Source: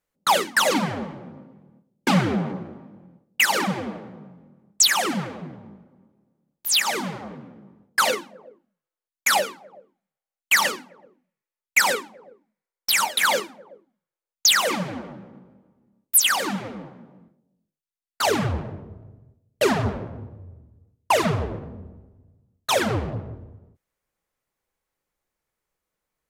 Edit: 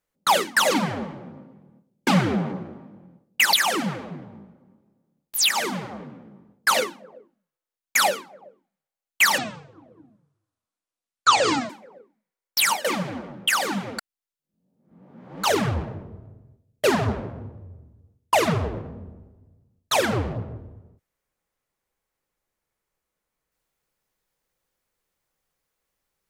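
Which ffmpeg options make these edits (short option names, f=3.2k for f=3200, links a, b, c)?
-filter_complex "[0:a]asplit=8[a][b][c][d][e][f][g][h];[a]atrim=end=3.532[i];[b]atrim=start=4.838:end=10.694[j];[c]atrim=start=10.69:end=12.01,asetpts=PTS-STARTPTS,asetrate=25137,aresample=44100,atrim=end_sample=102126,asetpts=PTS-STARTPTS[k];[d]atrim=start=12.006:end=13.162[l];[e]atrim=start=14.648:end=15.282[m];[f]atrim=start=16.248:end=16.762[n];[g]atrim=start=16.758:end=18.212,asetpts=PTS-STARTPTS,areverse[o];[h]atrim=start=18.208[p];[i][j]acrossfade=d=0.004:c1=hsin:c2=hsin[q];[q][k]acrossfade=d=0.004:c1=hsin:c2=hsin[r];[r][l]acrossfade=d=0.004:c1=hsin:c2=hsin[s];[s][m]acrossfade=d=0.004:c1=hsin:c2=hsin[t];[t][n]acrossfade=d=0.004:c1=hsin:c2=hsin[u];[u][o]acrossfade=d=0.004:c1=hsin:c2=hsin[v];[v][p]acrossfade=d=0.004:c1=hsin:c2=hsin"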